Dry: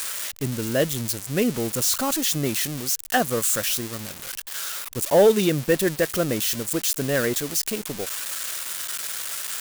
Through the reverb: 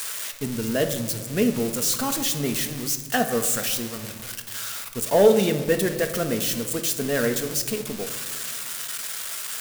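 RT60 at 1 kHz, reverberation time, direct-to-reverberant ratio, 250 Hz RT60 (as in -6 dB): 1.5 s, 1.7 s, 5.0 dB, 2.4 s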